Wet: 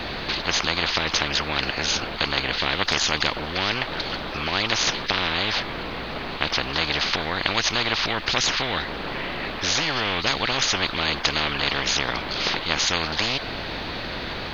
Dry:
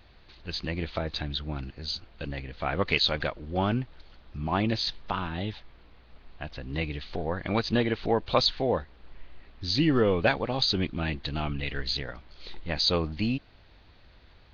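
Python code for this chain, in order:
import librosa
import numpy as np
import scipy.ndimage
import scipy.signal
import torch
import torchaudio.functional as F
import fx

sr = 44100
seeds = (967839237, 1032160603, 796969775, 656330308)

y = fx.spectral_comp(x, sr, ratio=10.0)
y = F.gain(torch.from_numpy(y), 6.5).numpy()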